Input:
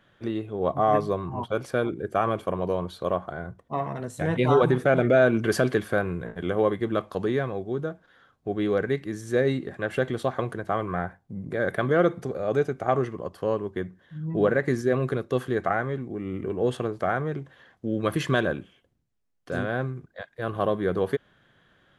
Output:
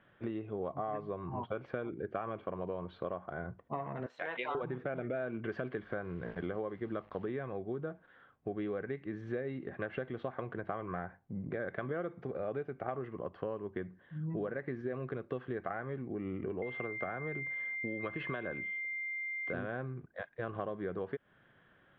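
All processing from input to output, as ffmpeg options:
-filter_complex "[0:a]asettb=1/sr,asplit=3[a][b][c];[a]atrim=end=4.064[d];[b]atrim=start=4.06:end=4.55,asetpts=PTS-STARTPTS,afade=t=in:d=0.004:c=qsin,afade=t=out:st=0.486:d=0.004:c=qsin,highpass=750,equalizer=f=5.2k:t=o:w=1.4:g=8[e];[c]atrim=start=4.546[f];[d][e]acrossfade=d=0.004:c1=hsin:c2=qsin[g];[g][f]acrossfade=d=0.004:c1=qsin:c2=hsin,asettb=1/sr,asplit=3[h][i][j];[h]atrim=end=5.754[k];[i]atrim=start=5.75:end=7.25,asetpts=PTS-STARTPTS,afade=t=in:d=0.004:c=qsin,afade=t=out:st=1.496:d=0.004:c=qsin,bandreject=f=2.6k:w=6.7,aeval=exprs='val(0)+0.00141*(sin(2*PI*50*n/s)+sin(2*PI*2*50*n/s)/2+sin(2*PI*3*50*n/s)/3+sin(2*PI*4*50*n/s)/4+sin(2*PI*5*50*n/s)/5)':c=same,acrusher=bits=9:dc=4:mix=0:aa=0.000001[l];[j]atrim=start=7.246[m];[k][l]acrossfade=d=0.004:c1=hsin:c2=qsin[n];[n][m]acrossfade=d=0.004:c1=qsin:c2=hsin,asettb=1/sr,asplit=3[o][p][q];[o]atrim=end=16.624[r];[p]atrim=start=16.62:end=19.53,asetpts=PTS-STARTPTS,afade=t=in:d=0.004:c=qsin,afade=t=out:st=2.906:d=0.004:c=qsin,aeval=exprs='val(0)+0.0251*sin(2*PI*2100*n/s)':c=same,acrossover=split=400|1000|4100[s][t][u][v];[s]acompressor=threshold=-34dB:ratio=3[w];[t]acompressor=threshold=-32dB:ratio=3[x];[u]acompressor=threshold=-32dB:ratio=3[y];[v]acompressor=threshold=-59dB:ratio=3[z];[w][x][y][z]amix=inputs=4:normalize=0[aa];[q]atrim=start=19.526[ab];[r][aa]acrossfade=d=0.004:c1=hsin:c2=qsin[ac];[ac][ab]acrossfade=d=0.004:c1=qsin:c2=hsin,lowpass=f=2.8k:w=0.5412,lowpass=f=2.8k:w=1.3066,lowshelf=f=78:g=-5.5,acompressor=threshold=-31dB:ratio=10,volume=-3dB"

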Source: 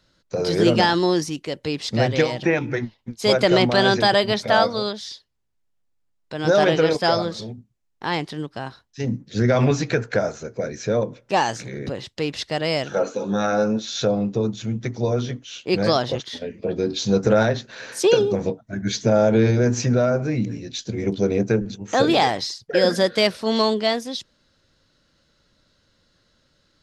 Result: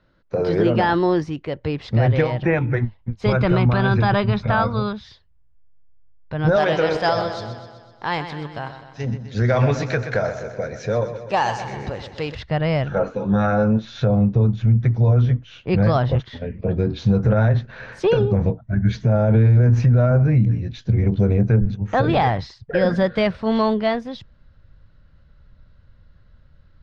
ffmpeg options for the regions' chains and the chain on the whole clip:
-filter_complex "[0:a]asettb=1/sr,asplit=3[a][b][c];[a]atrim=end=3.264[d];[b]atrim=start=3.26:end=5.04,asetpts=PTS-STARTPTS,afade=t=in:d=0.004:c=qsin,afade=t=out:st=1.776:d=0.004:c=qsin,lowpass=6.4k,aecho=1:1:0.8:0.46,atrim=end_sample=78498[e];[c]atrim=start=5.036[f];[d][e]acrossfade=d=0.004:c1=hsin:c2=qsin[g];[g][f]acrossfade=d=0.004:c1=qsin:c2=hsin,asettb=1/sr,asplit=3[h][i][j];[h]atrim=end=6.564[k];[i]atrim=start=6.56:end=12.35,asetpts=PTS-STARTPTS,afade=t=in:d=0.004:c=qsin,afade=t=out:st=5.786:d=0.004:c=qsin,bass=f=250:g=-12,treble=f=4k:g=14,aecho=1:1:126|252|378|504|630|756|882:0.299|0.173|0.1|0.0582|0.0338|0.0196|0.0114,atrim=end_sample=255339[l];[j]atrim=start=12.346[m];[k][l]acrossfade=d=0.004:c1=hsin:c2=qsin[n];[n][m]acrossfade=d=0.004:c1=qsin:c2=hsin,lowpass=1.9k,asubboost=boost=9.5:cutoff=99,alimiter=level_in=10.5dB:limit=-1dB:release=50:level=0:latency=1,volume=-7.5dB"

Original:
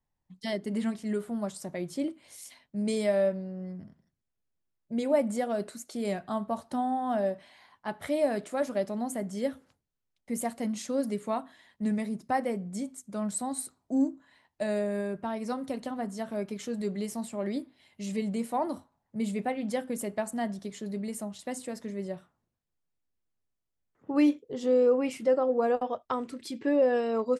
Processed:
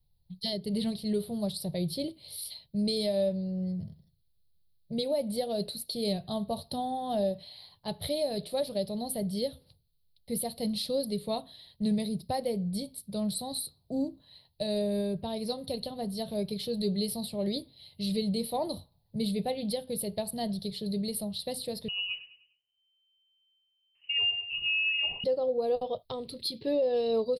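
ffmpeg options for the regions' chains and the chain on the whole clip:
-filter_complex "[0:a]asettb=1/sr,asplit=3[a][b][c];[a]atrim=end=21.884[d];[b]atrim=start=21.88:end=25.24,asetpts=PTS-STARTPTS,afade=t=in:d=0.004:c=qsin,afade=t=out:st=3.356:d=0.004:c=qsin,aecho=1:1:101|202|303|404:0.2|0.0798|0.0319|0.0128,atrim=end_sample=148176,acompressor=threshold=-25dB:ratio=4:attack=3.2:release=140:knee=1:detection=peak,lowpass=f=2.6k:t=q:w=0.5098,lowpass=f=2.6k:t=q:w=0.6013,lowpass=f=2.6k:t=q:w=0.9,lowpass=f=2.6k:t=q:w=2.563,afreqshift=-3100[e];[c]atrim=start=25.236[f];[d][e]acrossfade=d=0.004:c1=hsin:c2=qsin[g];[g][f]acrossfade=d=0.004:c1=qsin:c2=hsin,firequalizer=gain_entry='entry(160,0);entry(250,-16);entry(460,-4);entry(1400,-23);entry(4200,12);entry(6700,-27);entry(9800,4)':delay=0.05:min_phase=1,alimiter=level_in=4.5dB:limit=-24dB:level=0:latency=1:release=301,volume=-4.5dB,lowshelf=f=190:g=8,volume=6.5dB"

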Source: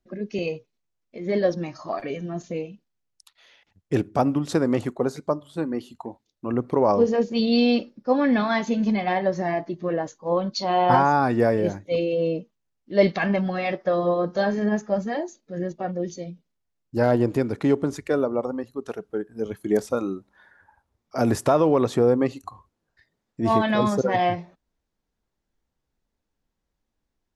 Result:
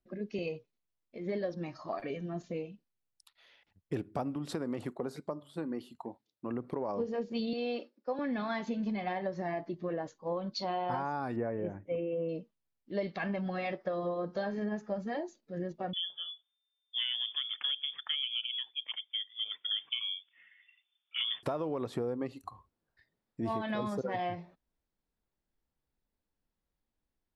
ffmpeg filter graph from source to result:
-filter_complex "[0:a]asettb=1/sr,asplit=3[a][b][c];[a]atrim=end=4.354[d];[b]atrim=start=4.35:end=7,asetpts=PTS-STARTPTS,afade=t=in:d=0.004:c=qsin,afade=t=out:st=2.646:d=0.004:c=qsin,highpass=110,acompressor=threshold=-24dB:ratio=2:attack=3.2:release=140:knee=1:detection=peak[e];[c]atrim=start=6.996[f];[d][e]acrossfade=d=0.004:c1=hsin:c2=qsin[g];[g][f]acrossfade=d=0.004:c1=qsin:c2=hsin,asettb=1/sr,asplit=3[h][i][j];[h]atrim=end=7.534[k];[i]atrim=start=7.53:end=8.19,asetpts=PTS-STARTPTS,afade=t=in:d=0.004:c=qsin,afade=t=out:st=0.656:d=0.004:c=qsin,highpass=f=310:w=0.5412,highpass=f=310:w=1.3066,agate=range=-6dB:threshold=-47dB:ratio=16:release=100:detection=peak,acrossover=split=2700[l][m];[m]acompressor=threshold=-38dB:ratio=4:attack=1:release=60[n];[l][n]amix=inputs=2:normalize=0[o];[j]atrim=start=8.186[p];[k][o]acrossfade=d=0.004:c1=hsin:c2=qsin[q];[q][p]acrossfade=d=0.004:c1=qsin:c2=hsin,asettb=1/sr,asplit=3[r][s][t];[r]atrim=end=11.364[u];[s]atrim=start=11.36:end=12.29,asetpts=PTS-STARTPTS,afade=t=in:d=0.004:c=qsin,afade=t=out:st=0.926:d=0.004:c=qsin,asuperstop=centerf=4300:order=4:qfactor=1.2,aemphasis=mode=reproduction:type=75fm[v];[t]atrim=start=12.286[w];[u][v]acrossfade=d=0.004:c1=hsin:c2=qsin[x];[x][w]acrossfade=d=0.004:c1=qsin:c2=hsin,asettb=1/sr,asplit=3[y][z][aa];[y]atrim=end=15.934[ab];[z]atrim=start=15.93:end=21.43,asetpts=PTS-STARTPTS,afade=t=in:d=0.004:c=qsin,afade=t=out:st=5.496:d=0.004:c=qsin,lowpass=f=3.1k:t=q:w=0.5098,lowpass=f=3.1k:t=q:w=0.6013,lowpass=f=3.1k:t=q:w=0.9,lowpass=f=3.1k:t=q:w=2.563,afreqshift=-3600,highpass=f=120:w=0.5412,highpass=f=120:w=1.3066,equalizer=f=970:t=o:w=1.4:g=3[ac];[aa]atrim=start=21.426[ad];[ab][ac]acrossfade=d=0.004:c1=hsin:c2=qsin[ae];[ae][ad]acrossfade=d=0.004:c1=qsin:c2=hsin,equalizer=f=6.4k:t=o:w=0.39:g=-8,acompressor=threshold=-24dB:ratio=6,volume=-7dB"

